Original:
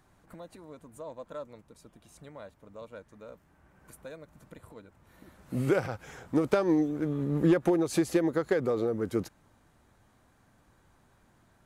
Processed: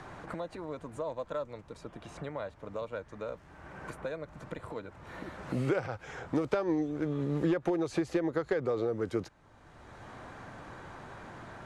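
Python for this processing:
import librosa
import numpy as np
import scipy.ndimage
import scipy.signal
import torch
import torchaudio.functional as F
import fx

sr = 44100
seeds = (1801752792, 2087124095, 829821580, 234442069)

y = scipy.signal.sosfilt(scipy.signal.butter(2, 6100.0, 'lowpass', fs=sr, output='sos'), x)
y = fx.peak_eq(y, sr, hz=220.0, db=-6.0, octaves=0.97)
y = fx.band_squash(y, sr, depth_pct=70)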